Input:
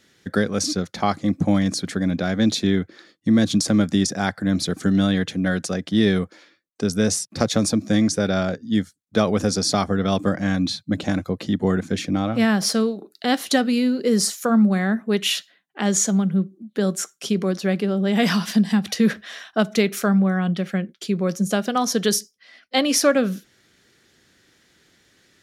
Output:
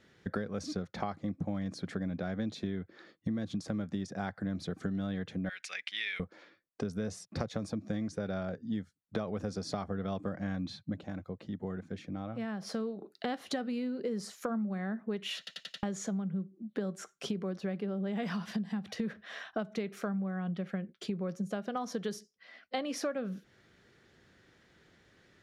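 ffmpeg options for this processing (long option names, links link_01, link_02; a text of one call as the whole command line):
ffmpeg -i in.wav -filter_complex "[0:a]asettb=1/sr,asplit=3[link_01][link_02][link_03];[link_01]atrim=end=5.494[link_04];[link_02]atrim=start=5.49:end=6.2,asetpts=PTS-STARTPTS,afade=type=in:duration=0.004:curve=qsin,afade=type=out:start_time=0.706:duration=0.004:curve=qsin,highpass=frequency=2300:width_type=q:width=5.3[link_05];[link_03]atrim=start=6.196[link_06];[link_04][link_05]acrossfade=duration=0.004:curve1=hsin:curve2=qsin[link_07];[link_07][link_06]acrossfade=duration=0.004:curve1=qsin:curve2=hsin,asplit=8[link_08][link_09][link_10][link_11][link_12][link_13][link_14][link_15];[link_08]atrim=end=11.06,asetpts=PTS-STARTPTS,afade=type=out:start_time=10.82:duration=0.24:silence=0.211349[link_16];[link_09]atrim=start=11.06:end=12.65,asetpts=PTS-STARTPTS,volume=-13.5dB[link_17];[link_10]atrim=start=12.65:end=15.472,asetpts=PTS-STARTPTS,afade=type=in:duration=0.24:silence=0.211349[link_18];[link_11]atrim=start=15.378:end=15.472[link_19];[link_12]atrim=start=15.378:end=15.472[link_20];[link_13]atrim=start=15.378:end=15.472[link_21];[link_14]atrim=start=15.378:end=15.472[link_22];[link_15]atrim=start=15.828[link_23];[link_16][link_17][link_18]concat=n=3:v=0:a=1[link_24];[link_24][link_19]acrossfade=duration=0.004:curve1=hsin:curve2=hsin[link_25];[link_25][link_20]acrossfade=duration=0.004:curve1=hsin:curve2=hsin[link_26];[link_26][link_21]acrossfade=duration=0.004:curve1=hsin:curve2=hsin[link_27];[link_27][link_22]acrossfade=duration=0.004:curve1=hsin:curve2=hsin[link_28];[link_28][link_23]acrossfade=duration=0.004:curve1=hsin:curve2=hsin,lowpass=frequency=1300:poles=1,equalizer=frequency=280:width_type=o:width=0.81:gain=-4.5,acompressor=threshold=-33dB:ratio=6" out.wav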